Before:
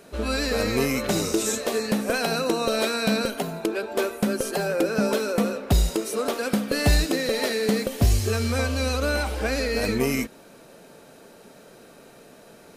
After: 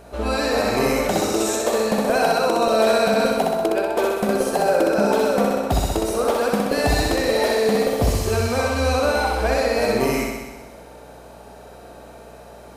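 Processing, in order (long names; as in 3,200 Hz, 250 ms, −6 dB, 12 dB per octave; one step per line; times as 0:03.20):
on a send: flutter between parallel walls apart 10.9 metres, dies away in 1.2 s
on the sum: mains hum 60 Hz, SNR 26 dB
parametric band 780 Hz +10.5 dB 1.2 octaves
boost into a limiter +5.5 dB
level −7 dB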